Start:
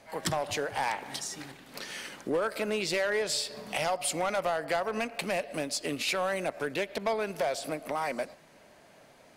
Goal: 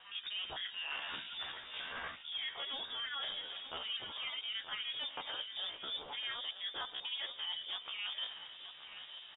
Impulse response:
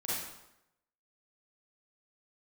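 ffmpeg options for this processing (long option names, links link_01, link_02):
-filter_complex "[0:a]flanger=delay=16:depth=3.2:speed=0.8,aeval=exprs='val(0)+0.000447*(sin(2*PI*50*n/s)+sin(2*PI*2*50*n/s)/2+sin(2*PI*3*50*n/s)/3+sin(2*PI*4*50*n/s)/4+sin(2*PI*5*50*n/s)/5)':channel_layout=same,highpass=frequency=140:poles=1,lowpass=frequency=2600:width_type=q:width=0.5098,lowpass=frequency=2600:width_type=q:width=0.6013,lowpass=frequency=2600:width_type=q:width=0.9,lowpass=frequency=2600:width_type=q:width=2.563,afreqshift=-3000,acrossover=split=2200[link_01][link_02];[link_01]aeval=exprs='val(0)*(1-0.7/2+0.7/2*cos(2*PI*1.9*n/s))':channel_layout=same[link_03];[link_02]aeval=exprs='val(0)*(1-0.7/2-0.7/2*cos(2*PI*1.9*n/s))':channel_layout=same[link_04];[link_03][link_04]amix=inputs=2:normalize=0,areverse,acompressor=threshold=-48dB:ratio=10,areverse,aecho=1:1:932|1864|2796|3728:0.282|0.0986|0.0345|0.0121,asetrate=57191,aresample=44100,atempo=0.771105,volume=9.5dB"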